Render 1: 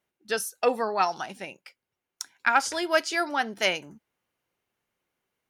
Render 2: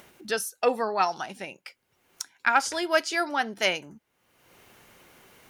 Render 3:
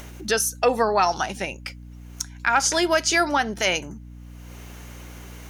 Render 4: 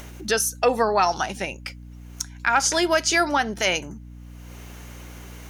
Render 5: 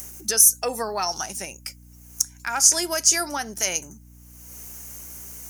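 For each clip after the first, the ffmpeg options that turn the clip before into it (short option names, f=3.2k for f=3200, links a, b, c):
-af "acompressor=mode=upward:threshold=-33dB:ratio=2.5"
-af "equalizer=f=6.3k:w=4.4:g=7.5,alimiter=limit=-18dB:level=0:latency=1:release=129,aeval=exprs='val(0)+0.00398*(sin(2*PI*60*n/s)+sin(2*PI*2*60*n/s)/2+sin(2*PI*3*60*n/s)/3+sin(2*PI*4*60*n/s)/4+sin(2*PI*5*60*n/s)/5)':c=same,volume=8.5dB"
-af anull
-af "aexciter=amount=8.6:drive=4.5:freq=5.3k,volume=-7.5dB"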